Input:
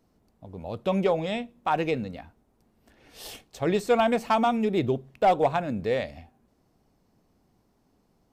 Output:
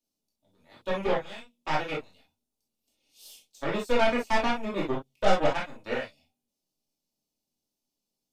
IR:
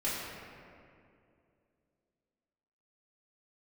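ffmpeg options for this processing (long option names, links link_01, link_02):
-filter_complex "[0:a]equalizer=frequency=60:width=0.41:gain=-7,acrossover=split=2900[link_01][link_02];[link_01]aeval=exprs='0.237*(cos(1*acos(clip(val(0)/0.237,-1,1)))-cos(1*PI/2))+0.0944*(cos(2*acos(clip(val(0)/0.237,-1,1)))-cos(2*PI/2))+0.0376*(cos(7*acos(clip(val(0)/0.237,-1,1)))-cos(7*PI/2))+0.0106*(cos(8*acos(clip(val(0)/0.237,-1,1)))-cos(8*PI/2))':channel_layout=same[link_03];[link_02]asoftclip=type=tanh:threshold=-35.5dB[link_04];[link_03][link_04]amix=inputs=2:normalize=0[link_05];[1:a]atrim=start_sample=2205,atrim=end_sample=3087[link_06];[link_05][link_06]afir=irnorm=-1:irlink=0,volume=-6.5dB"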